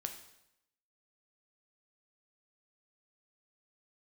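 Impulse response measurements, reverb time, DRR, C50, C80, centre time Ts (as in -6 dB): 0.80 s, 5.0 dB, 9.0 dB, 11.5 dB, 16 ms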